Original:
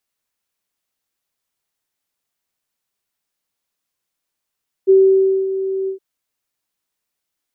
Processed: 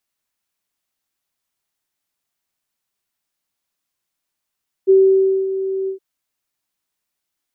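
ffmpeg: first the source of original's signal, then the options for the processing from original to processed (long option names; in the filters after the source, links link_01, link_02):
-f lavfi -i "aevalsrc='0.501*sin(2*PI*384*t)':duration=1.116:sample_rate=44100,afade=type=in:duration=0.028,afade=type=out:start_time=0.028:duration=0.571:silence=0.251,afade=type=out:start_time=1.01:duration=0.106"
-af "equalizer=frequency=480:width=7.2:gain=-7"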